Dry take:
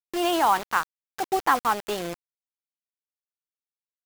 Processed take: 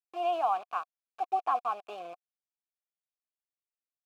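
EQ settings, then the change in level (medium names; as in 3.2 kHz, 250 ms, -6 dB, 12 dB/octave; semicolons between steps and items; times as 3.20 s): vowel filter a; treble shelf 8.1 kHz +5 dB; 0.0 dB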